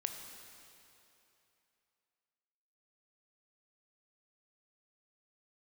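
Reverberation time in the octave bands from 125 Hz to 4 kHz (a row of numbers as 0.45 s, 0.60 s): 2.8 s, 2.7 s, 2.9 s, 3.0 s, 2.9 s, 2.7 s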